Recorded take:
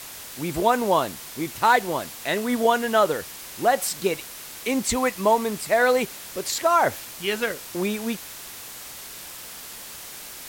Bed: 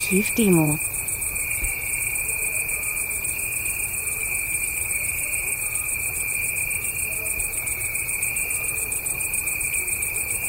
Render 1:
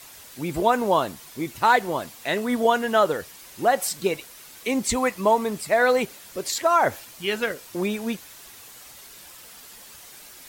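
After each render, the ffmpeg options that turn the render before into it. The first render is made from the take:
-af "afftdn=nr=8:nf=-40"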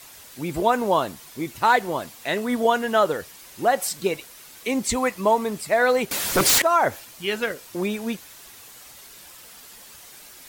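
-filter_complex "[0:a]asettb=1/sr,asplit=3[s0][s1][s2];[s0]atrim=end=6.114[s3];[s1]atrim=start=6.11:end=6.62,asetpts=PTS-STARTPTS,afade=t=in:d=0.004:c=qsin,afade=t=out:st=0.506:d=0.004:c=qsin,aeval=exprs='0.211*sin(PI/2*5.62*val(0)/0.211)':c=same[s4];[s2]atrim=start=6.616[s5];[s3][s4]acrossfade=d=0.004:c1=hsin:c2=qsin[s6];[s6][s5]acrossfade=d=0.004:c1=qsin:c2=hsin"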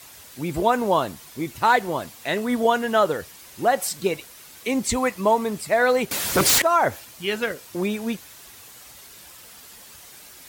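-af "highpass=55,lowshelf=f=95:g=8"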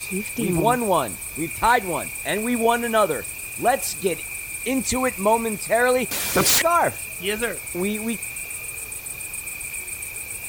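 -filter_complex "[1:a]volume=0.447[s0];[0:a][s0]amix=inputs=2:normalize=0"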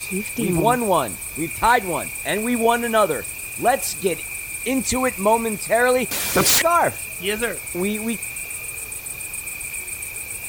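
-af "volume=1.19"

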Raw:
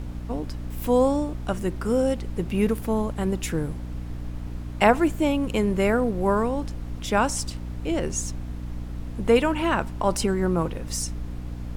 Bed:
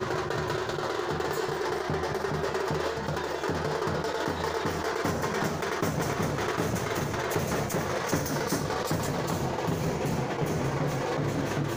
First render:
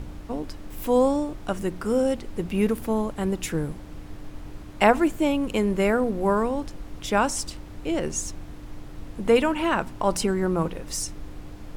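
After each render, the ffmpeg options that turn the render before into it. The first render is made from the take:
-af "bandreject=f=60:t=h:w=4,bandreject=f=120:t=h:w=4,bandreject=f=180:t=h:w=4,bandreject=f=240:t=h:w=4"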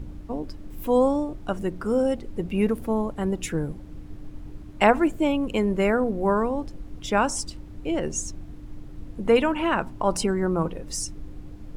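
-af "afftdn=nr=9:nf=-40"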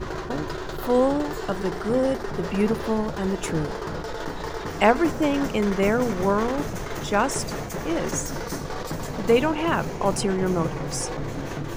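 -filter_complex "[1:a]volume=0.75[s0];[0:a][s0]amix=inputs=2:normalize=0"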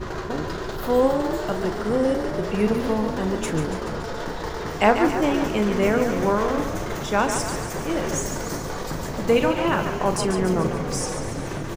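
-filter_complex "[0:a]asplit=2[s0][s1];[s1]adelay=38,volume=0.299[s2];[s0][s2]amix=inputs=2:normalize=0,asplit=8[s3][s4][s5][s6][s7][s8][s9][s10];[s4]adelay=142,afreqshift=32,volume=0.398[s11];[s5]adelay=284,afreqshift=64,volume=0.234[s12];[s6]adelay=426,afreqshift=96,volume=0.138[s13];[s7]adelay=568,afreqshift=128,volume=0.0822[s14];[s8]adelay=710,afreqshift=160,volume=0.0484[s15];[s9]adelay=852,afreqshift=192,volume=0.0285[s16];[s10]adelay=994,afreqshift=224,volume=0.0168[s17];[s3][s11][s12][s13][s14][s15][s16][s17]amix=inputs=8:normalize=0"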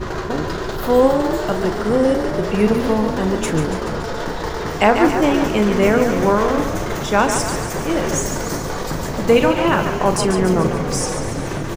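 -af "volume=1.88,alimiter=limit=0.891:level=0:latency=1"

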